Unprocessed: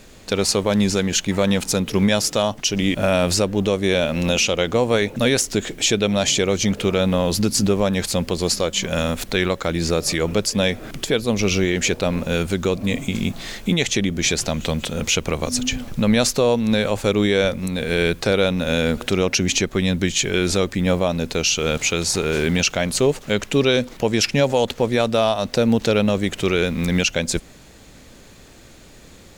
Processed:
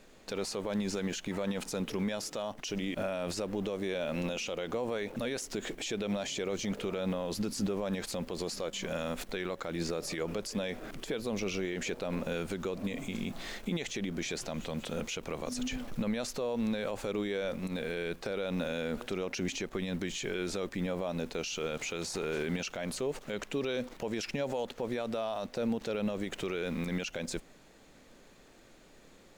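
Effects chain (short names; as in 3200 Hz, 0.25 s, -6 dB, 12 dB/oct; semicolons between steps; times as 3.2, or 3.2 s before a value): bell 71 Hz -13.5 dB 2.2 oct; in parallel at -8 dB: bit-crush 6-bit; on the sum: limiter -14.5 dBFS, peak gain reduction 11 dB; high shelf 2500 Hz -7.5 dB; gain -8.5 dB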